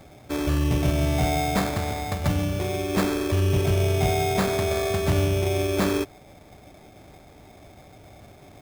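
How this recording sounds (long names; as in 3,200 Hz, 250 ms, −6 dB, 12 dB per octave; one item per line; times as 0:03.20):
aliases and images of a low sample rate 2,900 Hz, jitter 0%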